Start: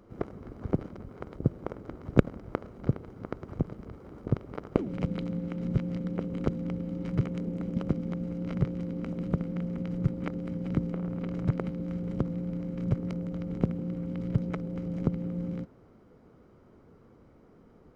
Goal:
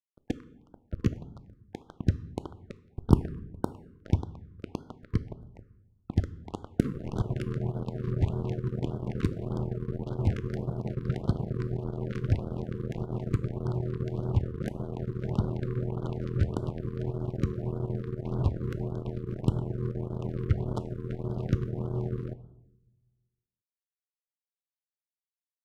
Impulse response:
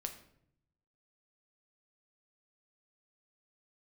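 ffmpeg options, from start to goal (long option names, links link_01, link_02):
-filter_complex "[0:a]acrusher=bits=4:mix=0:aa=0.5,asplit=2[link_01][link_02];[1:a]atrim=start_sample=2205[link_03];[link_02][link_03]afir=irnorm=-1:irlink=0,volume=-0.5dB[link_04];[link_01][link_04]amix=inputs=2:normalize=0,asetrate=30870,aresample=44100,afftfilt=real='re*(1-between(b*sr/1024,700*pow(2200/700,0.5+0.5*sin(2*PI*1.7*pts/sr))/1.41,700*pow(2200/700,0.5+0.5*sin(2*PI*1.7*pts/sr))*1.41))':imag='im*(1-between(b*sr/1024,700*pow(2200/700,0.5+0.5*sin(2*PI*1.7*pts/sr))/1.41,700*pow(2200/700,0.5+0.5*sin(2*PI*1.7*pts/sr))*1.41))':win_size=1024:overlap=0.75,volume=-4.5dB"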